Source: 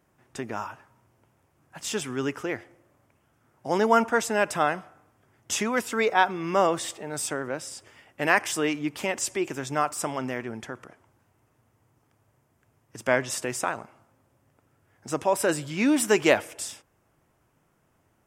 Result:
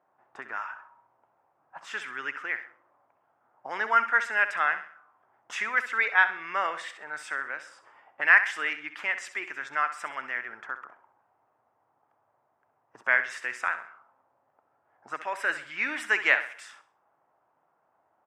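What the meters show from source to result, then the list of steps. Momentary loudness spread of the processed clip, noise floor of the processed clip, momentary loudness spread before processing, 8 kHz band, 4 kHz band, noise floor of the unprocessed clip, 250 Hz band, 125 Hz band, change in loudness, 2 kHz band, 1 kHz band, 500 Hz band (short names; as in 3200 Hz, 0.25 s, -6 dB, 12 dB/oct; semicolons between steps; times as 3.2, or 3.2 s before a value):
16 LU, -72 dBFS, 15 LU, -17.0 dB, -6.0 dB, -69 dBFS, -21.0 dB, under -25 dB, -1.0 dB, +5.5 dB, -3.0 dB, -14.5 dB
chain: bell 1400 Hz +5.5 dB 1.2 oct; on a send: feedback echo 65 ms, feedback 38%, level -12 dB; on the sum: auto-wah 770–1900 Hz, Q 2.5, up, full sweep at -26.5 dBFS; gain +3 dB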